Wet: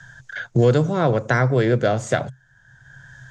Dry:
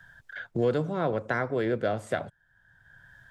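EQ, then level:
low-pass with resonance 6,600 Hz, resonance Q 4.7
parametric band 130 Hz +13 dB 0.28 octaves
+8.0 dB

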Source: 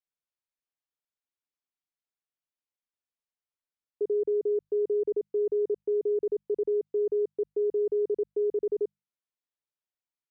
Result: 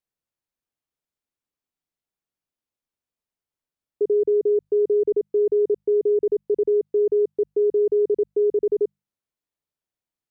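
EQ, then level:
tilt shelving filter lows +4.5 dB, about 640 Hz
+5.5 dB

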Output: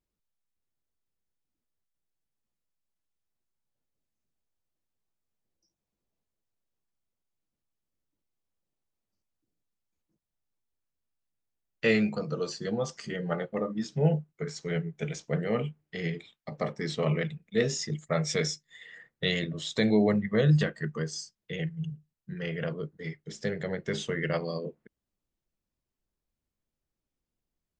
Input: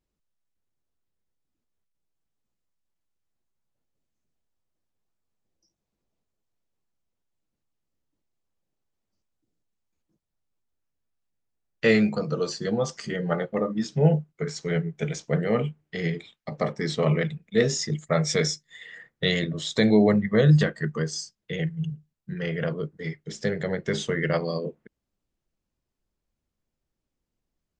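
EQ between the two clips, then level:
dynamic equaliser 2,700 Hz, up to +5 dB, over −48 dBFS, Q 4
−5.0 dB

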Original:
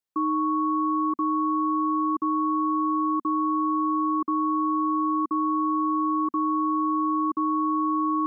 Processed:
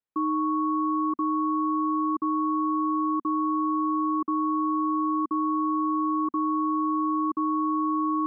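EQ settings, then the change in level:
high-frequency loss of the air 350 metres
0.0 dB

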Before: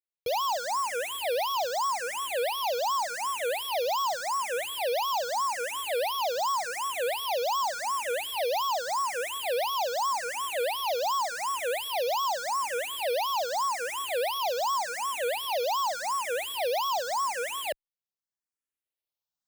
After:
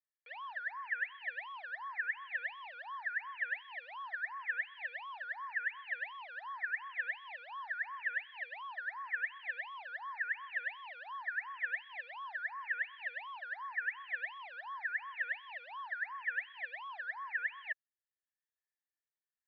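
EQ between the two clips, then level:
four-pole ladder high-pass 1,700 Hz, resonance 85%
high-frequency loss of the air 450 metres
head-to-tape spacing loss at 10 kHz 44 dB
+12.0 dB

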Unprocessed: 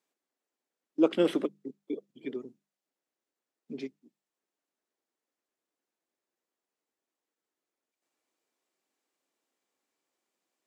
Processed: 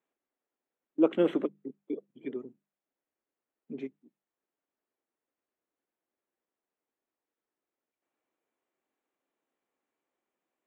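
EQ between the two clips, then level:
moving average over 9 samples
0.0 dB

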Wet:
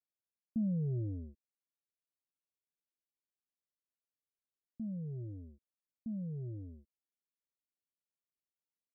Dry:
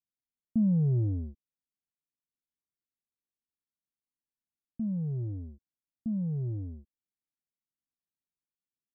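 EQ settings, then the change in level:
Butterworth low-pass 640 Hz 72 dB per octave
low-shelf EQ 490 Hz −12 dB
+2.0 dB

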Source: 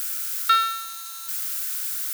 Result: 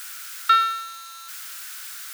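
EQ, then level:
low-pass filter 2,600 Hz 6 dB per octave
low-shelf EQ 440 Hz −3.5 dB
+3.5 dB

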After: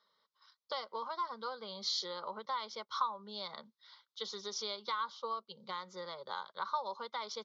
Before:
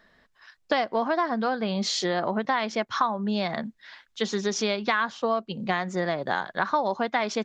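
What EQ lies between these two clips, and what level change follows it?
band-pass filter 510–4,800 Hz
phaser with its sweep stopped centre 710 Hz, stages 4
phaser with its sweep stopped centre 2,600 Hz, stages 6
−1.5 dB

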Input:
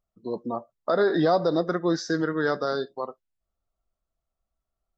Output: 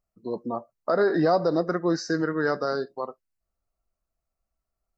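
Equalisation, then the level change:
Butterworth band-reject 3,400 Hz, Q 3.4
0.0 dB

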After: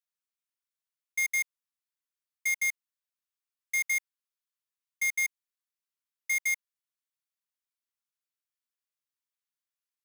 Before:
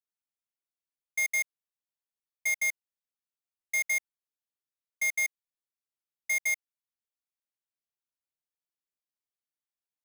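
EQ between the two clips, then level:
Butterworth high-pass 950 Hz 72 dB per octave
0.0 dB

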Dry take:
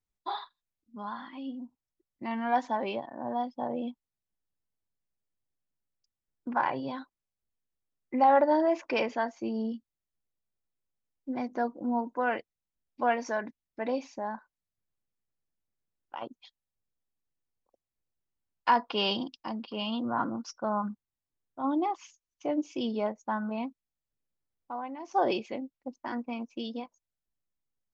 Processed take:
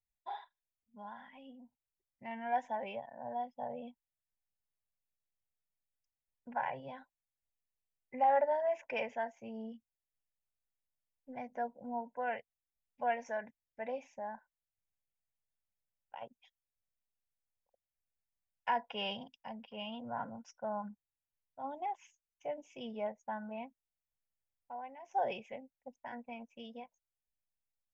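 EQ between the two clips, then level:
phaser with its sweep stopped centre 1,200 Hz, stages 6
−5.5 dB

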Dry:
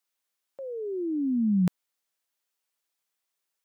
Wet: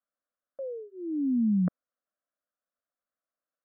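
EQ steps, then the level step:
low-pass filter 1,500 Hz 24 dB per octave
parametric band 560 Hz +3 dB 0.77 octaves
phaser with its sweep stopped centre 590 Hz, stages 8
0.0 dB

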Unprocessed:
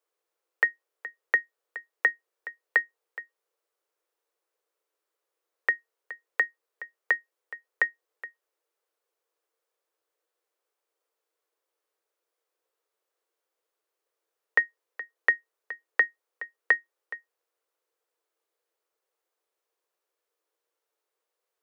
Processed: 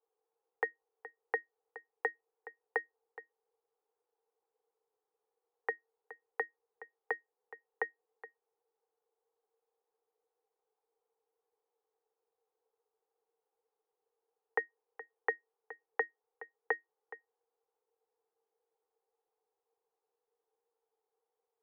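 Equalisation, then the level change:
pair of resonant band-passes 600 Hz, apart 0.78 octaves
+7.0 dB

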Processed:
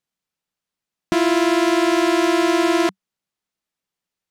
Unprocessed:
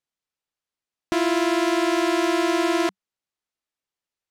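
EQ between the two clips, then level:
parametric band 180 Hz +9 dB 0.58 octaves
+3.5 dB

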